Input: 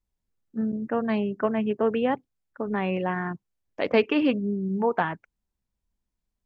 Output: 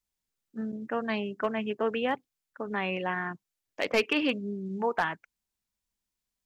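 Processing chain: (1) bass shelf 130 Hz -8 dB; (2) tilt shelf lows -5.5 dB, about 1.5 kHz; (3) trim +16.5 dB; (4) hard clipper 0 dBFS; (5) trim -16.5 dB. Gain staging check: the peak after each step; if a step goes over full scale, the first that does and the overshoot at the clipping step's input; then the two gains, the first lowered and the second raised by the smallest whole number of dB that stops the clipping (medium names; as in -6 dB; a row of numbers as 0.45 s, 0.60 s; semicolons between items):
-8.5 dBFS, -9.5 dBFS, +7.0 dBFS, 0.0 dBFS, -16.5 dBFS; step 3, 7.0 dB; step 3 +9.5 dB, step 5 -9.5 dB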